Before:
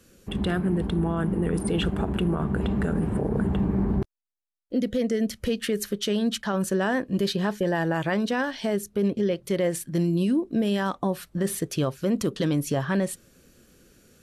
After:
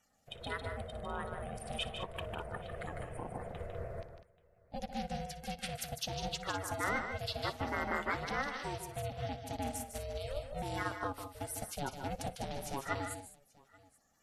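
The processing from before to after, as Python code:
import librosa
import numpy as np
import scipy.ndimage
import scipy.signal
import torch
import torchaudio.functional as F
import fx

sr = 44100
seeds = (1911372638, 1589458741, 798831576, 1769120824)

y = fx.spec_quant(x, sr, step_db=30)
y = fx.highpass(y, sr, hz=670.0, slope=6)
y = y * np.sin(2.0 * np.pi * 280.0 * np.arange(len(y)) / sr)
y = fx.echo_multitap(y, sr, ms=(59, 151, 200, 833), db=(-16.5, -6.0, -10.0, -20.0))
y = fx.upward_expand(y, sr, threshold_db=-41.0, expansion=1.5)
y = y * librosa.db_to_amplitude(-3.5)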